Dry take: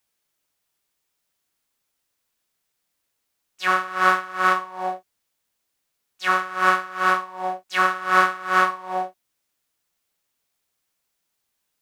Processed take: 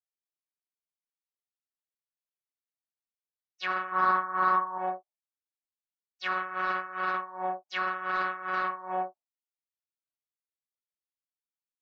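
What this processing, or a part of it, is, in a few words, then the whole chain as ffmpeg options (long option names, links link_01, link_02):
soft clipper into limiter: -filter_complex "[0:a]asoftclip=type=tanh:threshold=-8dB,alimiter=limit=-16.5dB:level=0:latency=1:release=26,asettb=1/sr,asplit=3[link_01][link_02][link_03];[link_01]atrim=end=3.924[link_04];[link_02]atrim=start=3.92:end=4.78,asetpts=PTS-STARTPTS,afade=type=in:duration=0.004:curve=qsin,afade=type=out:start_time=0.856:duration=0.004:curve=qsin,equalizer=frequency=100:width_type=o:width=0.67:gain=11,equalizer=frequency=250:width_type=o:width=0.67:gain=9,equalizer=frequency=1000:width_type=o:width=0.67:gain=10,equalizer=frequency=2500:width_type=o:width=0.67:gain=-6[link_05];[link_03]atrim=start=4.776[link_06];[link_04][link_05]acrossfade=duration=0.004:curve1=hsin:curve2=qsin[link_07];[link_07][link_06]acrossfade=duration=0.004:curve1=qsin:curve2=hsin,afftdn=noise_reduction=25:noise_floor=-43,lowpass=5600,volume=-4.5dB"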